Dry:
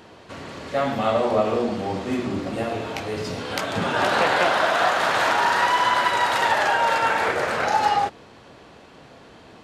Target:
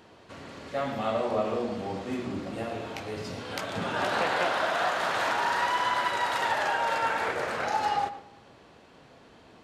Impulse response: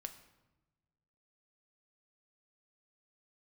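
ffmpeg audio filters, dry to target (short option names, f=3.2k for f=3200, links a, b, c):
-filter_complex "[0:a]asplit=2[a][b];[1:a]atrim=start_sample=2205,highshelf=f=5.5k:g=-12,adelay=116[c];[b][c]afir=irnorm=-1:irlink=0,volume=-8dB[d];[a][d]amix=inputs=2:normalize=0,volume=-7.5dB"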